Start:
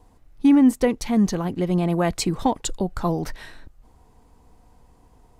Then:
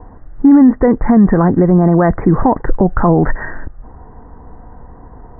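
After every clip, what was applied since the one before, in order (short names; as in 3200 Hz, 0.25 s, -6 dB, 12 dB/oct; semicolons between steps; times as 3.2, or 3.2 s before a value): steep low-pass 1900 Hz 96 dB/oct; maximiser +19 dB; gain -1 dB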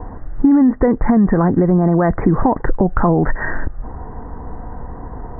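compressor 3:1, threshold -20 dBFS, peak gain reduction 11.5 dB; gain +6.5 dB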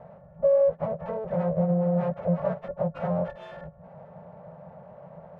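frequency quantiser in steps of 4 st; full-wave rectifier; double band-pass 310 Hz, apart 1.8 oct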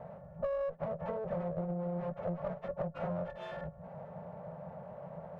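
one diode to ground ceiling -22.5 dBFS; compressor 5:1, threshold -34 dBFS, peak gain reduction 12.5 dB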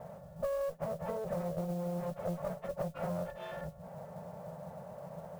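modulation noise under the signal 24 dB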